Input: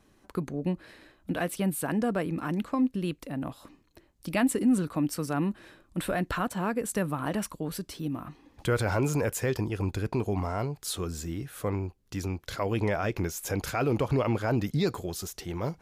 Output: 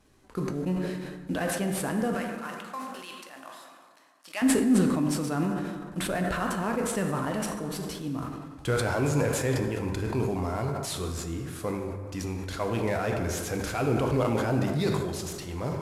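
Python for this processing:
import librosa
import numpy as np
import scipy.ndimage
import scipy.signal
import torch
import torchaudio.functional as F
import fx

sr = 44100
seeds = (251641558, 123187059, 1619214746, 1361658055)

y = fx.cvsd(x, sr, bps=64000)
y = fx.highpass(y, sr, hz=980.0, slope=12, at=(2.14, 4.42))
y = fx.rev_plate(y, sr, seeds[0], rt60_s=1.9, hf_ratio=0.5, predelay_ms=0, drr_db=3.0)
y = fx.sustainer(y, sr, db_per_s=33.0)
y = F.gain(torch.from_numpy(y), -1.5).numpy()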